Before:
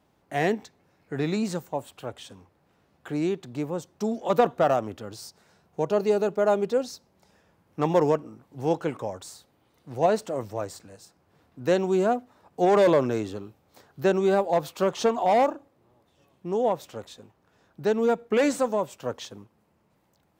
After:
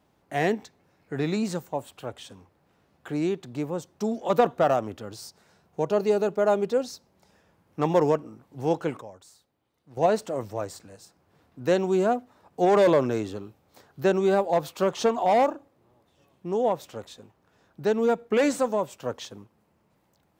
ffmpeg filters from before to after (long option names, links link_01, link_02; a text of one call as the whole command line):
ffmpeg -i in.wav -filter_complex "[0:a]asplit=3[link_01][link_02][link_03];[link_01]atrim=end=9.012[link_04];[link_02]atrim=start=9.008:end=9.972,asetpts=PTS-STARTPTS,volume=-11dB[link_05];[link_03]atrim=start=9.968[link_06];[link_04][link_05]acrossfade=duration=0.004:curve1=hsin:curve2=hsin[link_07];[link_07][link_06]acrossfade=duration=0.004:curve1=hsin:curve2=hsin" out.wav